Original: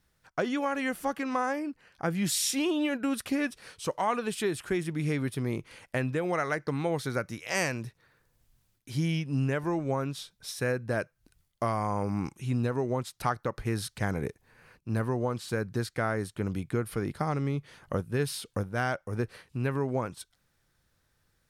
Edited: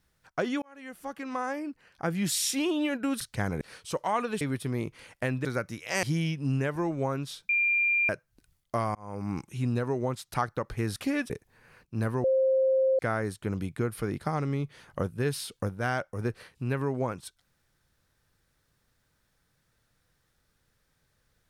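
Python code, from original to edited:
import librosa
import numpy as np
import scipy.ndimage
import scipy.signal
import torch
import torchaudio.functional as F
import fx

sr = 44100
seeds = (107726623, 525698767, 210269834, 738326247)

y = fx.edit(x, sr, fx.fade_in_span(start_s=0.62, length_s=1.62, curve='qsin'),
    fx.swap(start_s=3.21, length_s=0.34, other_s=13.84, other_length_s=0.4),
    fx.cut(start_s=4.35, length_s=0.78),
    fx.cut(start_s=6.17, length_s=0.88),
    fx.cut(start_s=7.63, length_s=1.28),
    fx.bleep(start_s=10.37, length_s=0.6, hz=2390.0, db=-22.0),
    fx.fade_in_span(start_s=11.83, length_s=0.42),
    fx.bleep(start_s=15.18, length_s=0.75, hz=528.0, db=-20.5), tone=tone)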